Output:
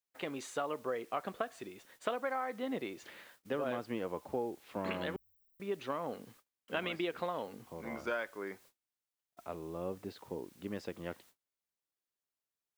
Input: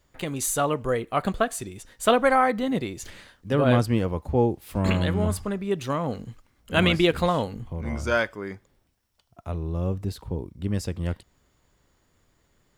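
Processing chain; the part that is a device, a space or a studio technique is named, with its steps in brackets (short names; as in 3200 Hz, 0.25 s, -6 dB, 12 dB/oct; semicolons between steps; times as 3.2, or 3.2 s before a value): baby monitor (BPF 320–3100 Hz; compressor 10:1, threshold -27 dBFS, peak gain reduction 13 dB; white noise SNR 25 dB; gate -55 dBFS, range -30 dB); 5.16–5.6 inverse Chebyshev band-stop 230–5500 Hz, stop band 80 dB; gain -5 dB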